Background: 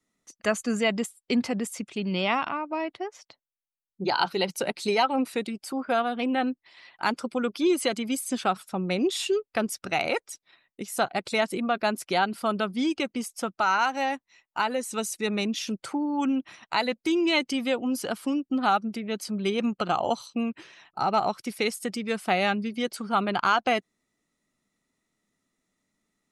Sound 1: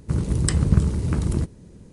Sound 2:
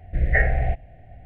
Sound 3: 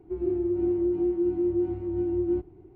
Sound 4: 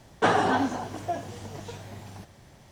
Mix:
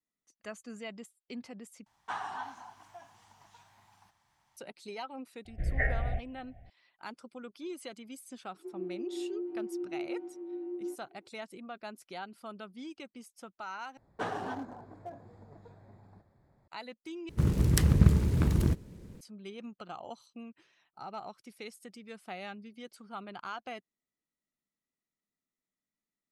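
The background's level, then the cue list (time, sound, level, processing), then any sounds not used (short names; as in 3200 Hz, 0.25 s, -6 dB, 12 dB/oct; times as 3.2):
background -18 dB
1.86 replace with 4 -17 dB + resonant low shelf 670 Hz -10.5 dB, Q 3
5.45 add 2 -10.5 dB
8.54 add 3 -10.5 dB + HPF 310 Hz 24 dB/oct
13.97 replace with 4 -13.5 dB + Wiener smoothing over 15 samples
17.29 replace with 1 -3.5 dB + noise-modulated delay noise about 1700 Hz, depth 0.035 ms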